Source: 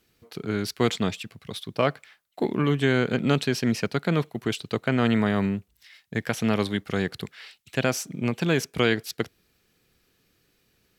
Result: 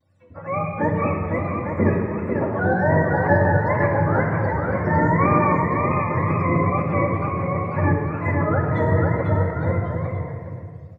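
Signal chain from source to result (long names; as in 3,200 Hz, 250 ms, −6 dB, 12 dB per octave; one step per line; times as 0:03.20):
frequency axis turned over on the octave scale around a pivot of 480 Hz
parametric band 280 Hz +4.5 dB 1.2 octaves
notch filter 3,000 Hz, Q 9.8
on a send: bouncing-ball delay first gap 500 ms, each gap 0.7×, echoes 5
on the sum: tape wow and flutter 120 cents
rectangular room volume 3,500 cubic metres, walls mixed, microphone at 2.4 metres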